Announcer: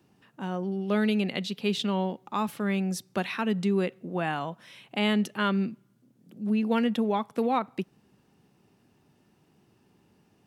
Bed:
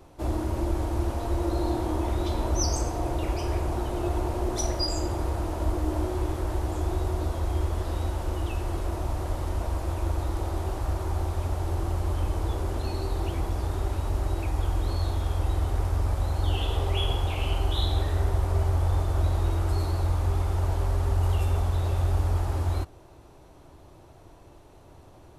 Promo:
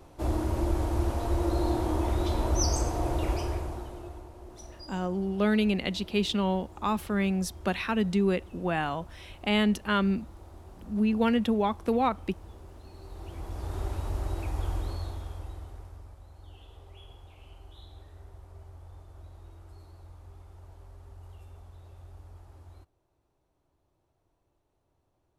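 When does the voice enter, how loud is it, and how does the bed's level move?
4.50 s, +0.5 dB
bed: 0:03.34 −0.5 dB
0:04.30 −19 dB
0:12.89 −19 dB
0:13.79 −4.5 dB
0:14.75 −4.5 dB
0:16.21 −24 dB

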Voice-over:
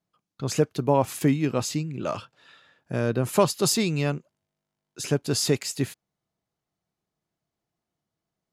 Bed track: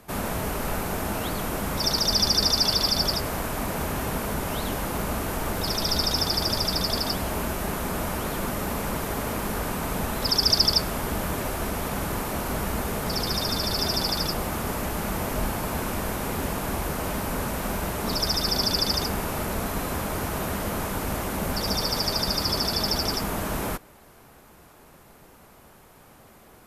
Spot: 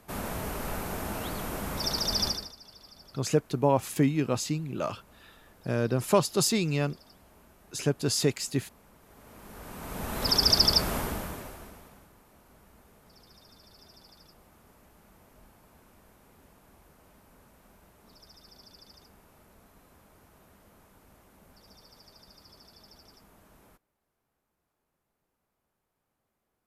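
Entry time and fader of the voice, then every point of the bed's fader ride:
2.75 s, −2.5 dB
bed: 0:02.28 −6 dB
0:02.56 −29.5 dB
0:08.99 −29.5 dB
0:10.31 −1.5 dB
0:10.97 −1.5 dB
0:12.13 −30 dB

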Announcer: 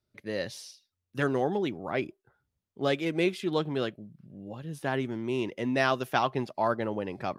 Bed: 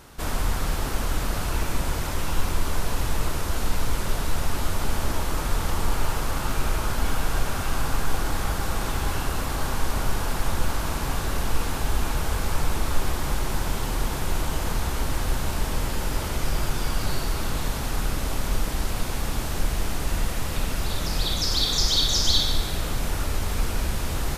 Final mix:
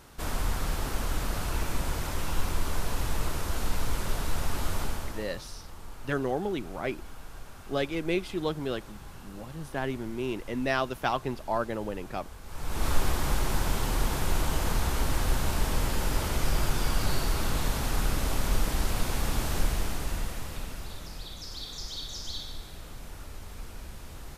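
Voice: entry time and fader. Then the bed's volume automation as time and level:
4.90 s, −2.0 dB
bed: 0:04.80 −4.5 dB
0:05.48 −20 dB
0:12.43 −20 dB
0:12.86 −1.5 dB
0:19.58 −1.5 dB
0:21.28 −16.5 dB

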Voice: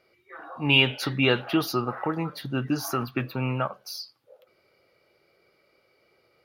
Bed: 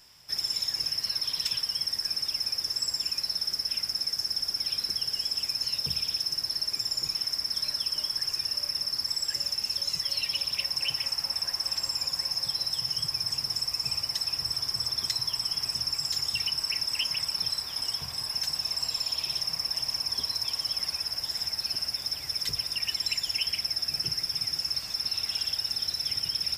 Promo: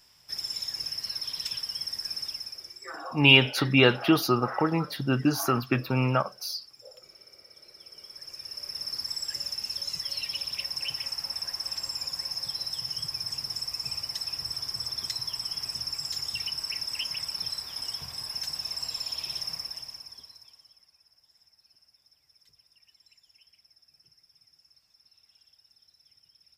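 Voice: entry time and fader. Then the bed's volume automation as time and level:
2.55 s, +2.5 dB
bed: 0:02.26 −4 dB
0:03.05 −23 dB
0:07.63 −23 dB
0:08.90 −3.5 dB
0:19.52 −3.5 dB
0:20.88 −31.5 dB

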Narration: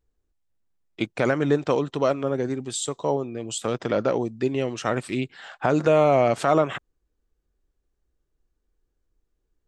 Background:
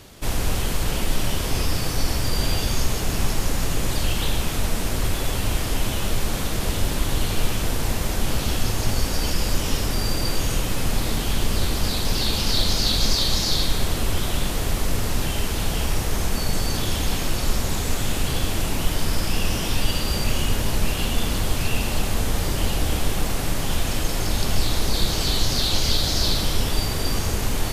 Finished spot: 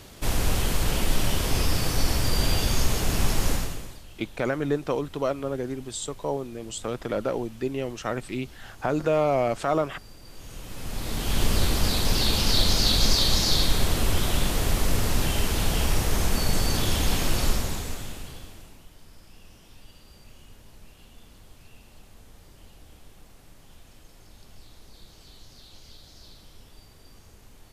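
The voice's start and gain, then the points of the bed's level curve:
3.20 s, −4.5 dB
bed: 0:03.53 −1 dB
0:04.04 −24.5 dB
0:10.22 −24.5 dB
0:11.42 −0.5 dB
0:17.45 −0.5 dB
0:18.88 −28 dB

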